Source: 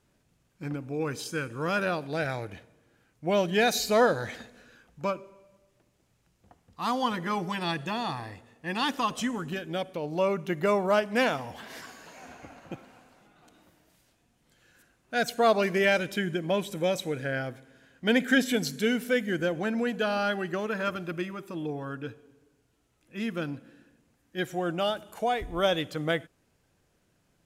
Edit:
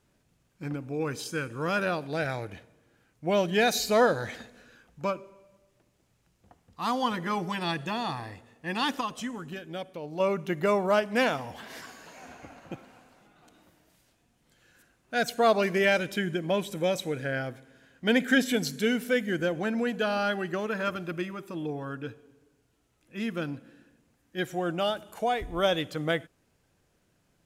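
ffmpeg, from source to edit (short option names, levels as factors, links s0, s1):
-filter_complex "[0:a]asplit=3[s0][s1][s2];[s0]atrim=end=9.012[s3];[s1]atrim=start=9.008:end=10.202,asetpts=PTS-STARTPTS,volume=0.562[s4];[s2]atrim=start=10.198[s5];[s3][s4]acrossfade=d=0.004:c1=hsin:c2=hsin[s6];[s6][s5]acrossfade=d=0.004:c1=hsin:c2=hsin"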